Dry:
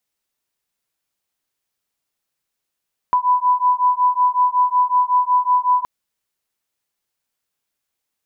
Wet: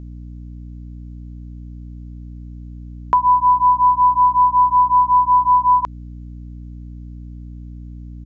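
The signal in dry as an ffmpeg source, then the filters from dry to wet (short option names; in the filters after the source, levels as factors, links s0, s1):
-f lavfi -i "aevalsrc='0.15*(sin(2*PI*992*t)+sin(2*PI*997.4*t))':d=2.72:s=44100"
-filter_complex "[0:a]aeval=exprs='val(0)+0.0126*(sin(2*PI*60*n/s)+sin(2*PI*2*60*n/s)/2+sin(2*PI*3*60*n/s)/3+sin(2*PI*4*60*n/s)/4+sin(2*PI*5*60*n/s)/5)':c=same,aresample=16000,aresample=44100,asplit=2[s0][s1];[s1]acompressor=threshold=0.0794:ratio=6,volume=0.944[s2];[s0][s2]amix=inputs=2:normalize=0"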